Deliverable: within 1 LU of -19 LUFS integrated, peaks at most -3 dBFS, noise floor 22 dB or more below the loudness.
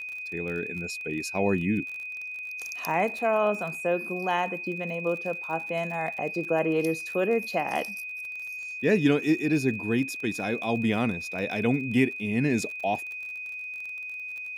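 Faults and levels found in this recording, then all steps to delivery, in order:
tick rate 37 per s; steady tone 2.5 kHz; tone level -34 dBFS; loudness -28.0 LUFS; peak level -10.0 dBFS; loudness target -19.0 LUFS
-> de-click; band-stop 2.5 kHz, Q 30; trim +9 dB; peak limiter -3 dBFS

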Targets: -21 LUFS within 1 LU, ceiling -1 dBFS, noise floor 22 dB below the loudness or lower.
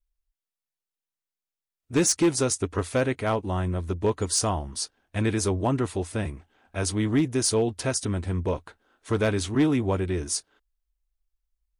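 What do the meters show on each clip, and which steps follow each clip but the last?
clipped samples 0.5%; clipping level -15.5 dBFS; loudness -26.0 LUFS; peak level -15.5 dBFS; loudness target -21.0 LUFS
-> clip repair -15.5 dBFS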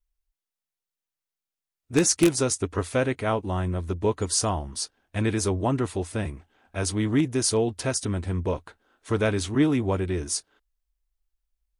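clipped samples 0.0%; loudness -26.0 LUFS; peak level -6.5 dBFS; loudness target -21.0 LUFS
-> trim +5 dB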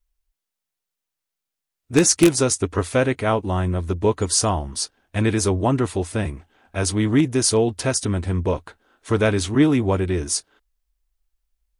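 loudness -21.0 LUFS; peak level -1.5 dBFS; noise floor -84 dBFS

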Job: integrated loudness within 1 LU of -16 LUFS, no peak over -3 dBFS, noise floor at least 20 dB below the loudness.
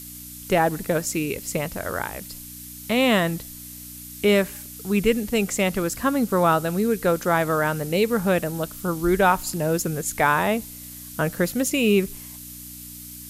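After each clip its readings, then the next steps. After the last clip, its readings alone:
hum 60 Hz; highest harmonic 300 Hz; hum level -44 dBFS; noise floor -40 dBFS; noise floor target -43 dBFS; loudness -22.5 LUFS; peak level -6.0 dBFS; loudness target -16.0 LUFS
-> de-hum 60 Hz, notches 5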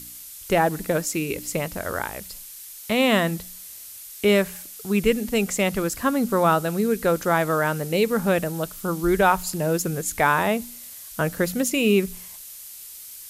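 hum not found; noise floor -41 dBFS; noise floor target -43 dBFS
-> noise reduction 6 dB, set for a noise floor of -41 dBFS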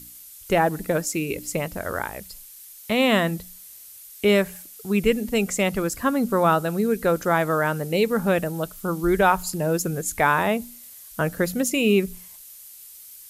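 noise floor -45 dBFS; loudness -23.0 LUFS; peak level -6.0 dBFS; loudness target -16.0 LUFS
-> trim +7 dB; peak limiter -3 dBFS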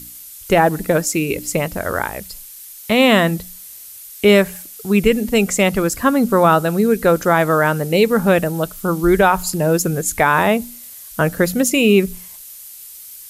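loudness -16.5 LUFS; peak level -3.0 dBFS; noise floor -38 dBFS

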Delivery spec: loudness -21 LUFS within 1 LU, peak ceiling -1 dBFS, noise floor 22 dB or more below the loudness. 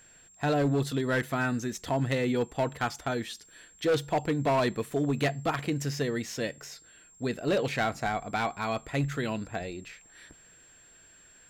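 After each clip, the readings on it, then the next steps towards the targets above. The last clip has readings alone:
clipped samples 1.2%; clipping level -21.0 dBFS; steady tone 7.5 kHz; tone level -55 dBFS; loudness -30.0 LUFS; peak level -21.0 dBFS; loudness target -21.0 LUFS
-> clip repair -21 dBFS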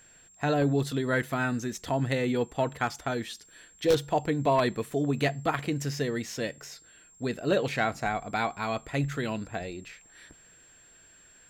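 clipped samples 0.0%; steady tone 7.5 kHz; tone level -55 dBFS
-> band-stop 7.5 kHz, Q 30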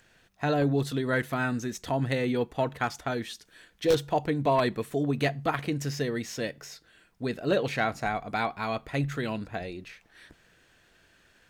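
steady tone not found; loudness -29.5 LUFS; peak level -12.0 dBFS; loudness target -21.0 LUFS
-> trim +8.5 dB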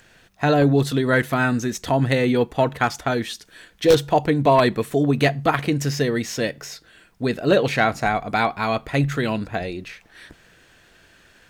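loudness -21.0 LUFS; peak level -3.5 dBFS; noise floor -55 dBFS

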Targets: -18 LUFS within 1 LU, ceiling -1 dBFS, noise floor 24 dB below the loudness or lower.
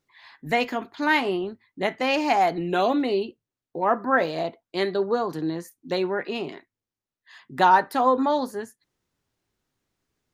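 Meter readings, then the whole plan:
loudness -24.0 LUFS; peak level -5.0 dBFS; loudness target -18.0 LUFS
-> trim +6 dB; peak limiter -1 dBFS

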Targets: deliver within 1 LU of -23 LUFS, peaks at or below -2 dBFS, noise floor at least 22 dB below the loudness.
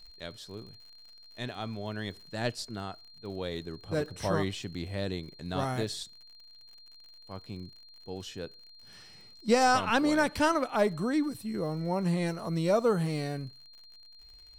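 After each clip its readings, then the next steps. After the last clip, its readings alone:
tick rate 57 per s; steady tone 4.2 kHz; tone level -52 dBFS; loudness -31.0 LUFS; peak level -12.5 dBFS; loudness target -23.0 LUFS
-> de-click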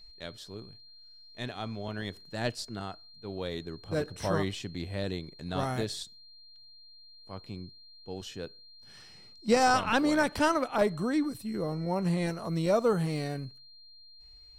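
tick rate 0.34 per s; steady tone 4.2 kHz; tone level -52 dBFS
-> band-stop 4.2 kHz, Q 30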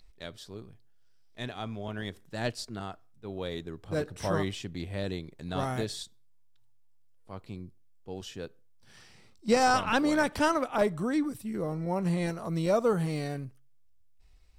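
steady tone not found; loudness -31.0 LUFS; peak level -12.5 dBFS; loudness target -23.0 LUFS
-> trim +8 dB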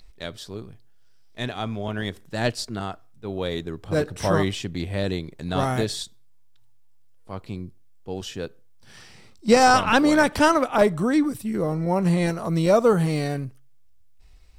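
loudness -23.0 LUFS; peak level -4.5 dBFS; noise floor -49 dBFS

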